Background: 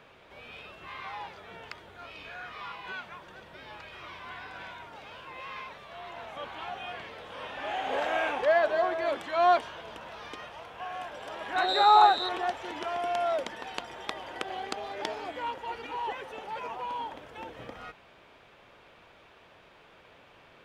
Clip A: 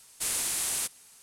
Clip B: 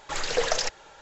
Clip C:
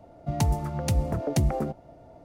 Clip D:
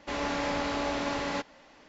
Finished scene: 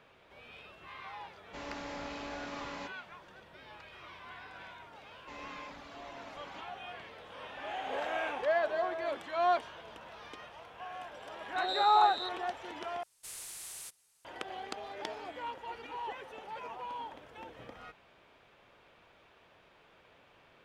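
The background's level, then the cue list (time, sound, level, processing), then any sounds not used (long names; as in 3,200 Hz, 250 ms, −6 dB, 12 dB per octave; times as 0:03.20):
background −6 dB
0:01.46: mix in D −11.5 dB
0:05.20: mix in D −16.5 dB + reverb reduction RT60 1.9 s
0:13.03: overwrite with A −15 dB + parametric band 250 Hz −12 dB 0.43 octaves
not used: B, C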